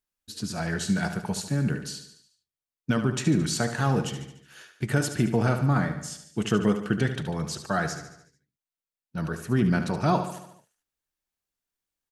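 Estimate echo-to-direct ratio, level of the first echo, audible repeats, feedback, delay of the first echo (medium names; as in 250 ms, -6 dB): -8.5 dB, -10.0 dB, 5, 55%, 73 ms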